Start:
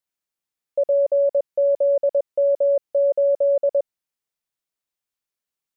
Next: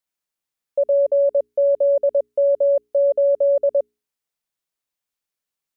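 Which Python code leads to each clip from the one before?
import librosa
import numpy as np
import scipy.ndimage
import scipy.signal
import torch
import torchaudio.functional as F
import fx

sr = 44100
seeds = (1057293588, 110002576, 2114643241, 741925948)

y = fx.hum_notches(x, sr, base_hz=60, count=7)
y = y * 10.0 ** (1.5 / 20.0)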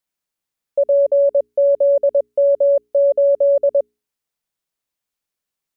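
y = fx.low_shelf(x, sr, hz=460.0, db=3.0)
y = y * 10.0 ** (1.5 / 20.0)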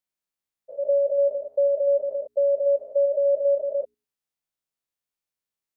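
y = fx.spec_steps(x, sr, hold_ms=100)
y = y * 10.0 ** (-5.5 / 20.0)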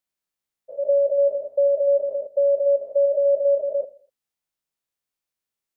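y = fx.echo_feedback(x, sr, ms=82, feedback_pct=40, wet_db=-19.0)
y = y * 10.0 ** (2.0 / 20.0)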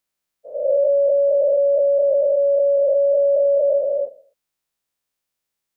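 y = fx.spec_dilate(x, sr, span_ms=480)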